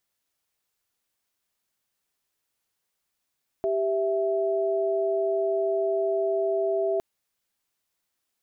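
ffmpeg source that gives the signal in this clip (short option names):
-f lavfi -i "aevalsrc='0.0562*(sin(2*PI*392*t)+sin(2*PI*659.26*t))':d=3.36:s=44100"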